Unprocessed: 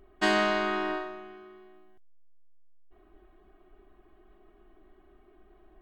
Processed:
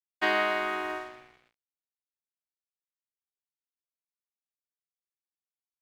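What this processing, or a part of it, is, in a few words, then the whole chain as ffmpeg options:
pocket radio on a weak battery: -af "highpass=400,lowpass=3400,aeval=exprs='sgn(val(0))*max(abs(val(0))-0.00422,0)':c=same,equalizer=f=2200:t=o:w=0.35:g=5.5"

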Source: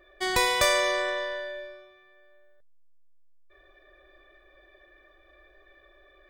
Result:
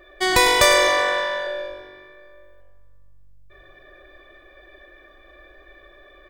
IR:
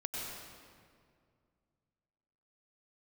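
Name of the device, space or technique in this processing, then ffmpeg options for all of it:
saturated reverb return: -filter_complex "[0:a]asettb=1/sr,asplit=3[s0][s1][s2];[s0]atrim=end=0.884[s3];[s1]atrim=start=0.88:end=1.47,asetpts=PTS-STARTPTS,afade=t=in:d=0.004:c=qsin,afade=t=out:st=0.586:d=0.004:c=qsin,lowshelf=f=500:t=q:w=1.5:g=-10.5[s4];[s2]atrim=start=1.466[s5];[s3][s4]acrossfade=d=0.004:c1=hsin:c2=qsin[s6];[s6][s5]acrossfade=d=0.004:c1=qsin:c2=hsin,asplit=5[s7][s8][s9][s10][s11];[s8]adelay=98,afreqshift=-48,volume=0.282[s12];[s9]adelay=196,afreqshift=-96,volume=0.0989[s13];[s10]adelay=294,afreqshift=-144,volume=0.0347[s14];[s11]adelay=392,afreqshift=-192,volume=0.012[s15];[s7][s12][s13][s14][s15]amix=inputs=5:normalize=0,asplit=2[s16][s17];[1:a]atrim=start_sample=2205[s18];[s17][s18]afir=irnorm=-1:irlink=0,asoftclip=type=tanh:threshold=0.0376,volume=0.237[s19];[s16][s19]amix=inputs=2:normalize=0,volume=2.24"

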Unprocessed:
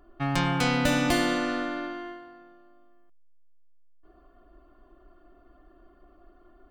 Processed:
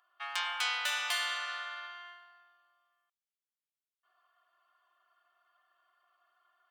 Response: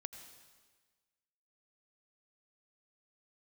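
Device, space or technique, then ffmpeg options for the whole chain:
headphones lying on a table: -af "highpass=f=1000:w=0.5412,highpass=f=1000:w=1.3066,equalizer=f=3200:t=o:w=0.38:g=5.5,volume=0.596"

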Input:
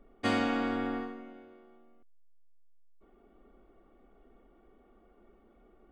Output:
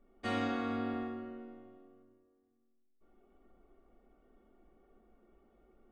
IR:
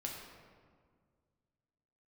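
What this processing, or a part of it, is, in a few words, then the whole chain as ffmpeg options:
stairwell: -filter_complex "[1:a]atrim=start_sample=2205[s0];[0:a][s0]afir=irnorm=-1:irlink=0,volume=0.531"

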